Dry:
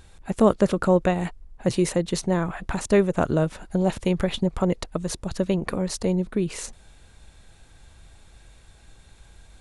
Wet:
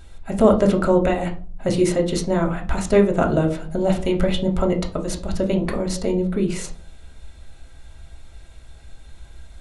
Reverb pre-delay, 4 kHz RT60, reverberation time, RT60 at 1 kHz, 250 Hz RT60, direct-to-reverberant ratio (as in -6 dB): 3 ms, 0.30 s, 0.45 s, 0.35 s, 0.50 s, 1.0 dB